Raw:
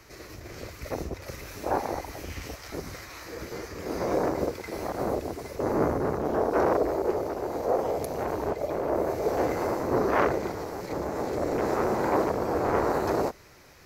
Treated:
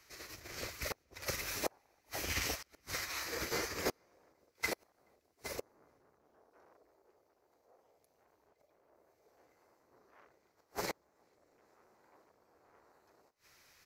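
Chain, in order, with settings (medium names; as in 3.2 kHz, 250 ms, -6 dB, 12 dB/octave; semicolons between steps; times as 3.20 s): tilt shelf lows -6.5 dB; inverted gate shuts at -25 dBFS, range -26 dB; echo from a far wall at 73 m, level -23 dB; upward expansion 2.5:1, over -48 dBFS; trim +6 dB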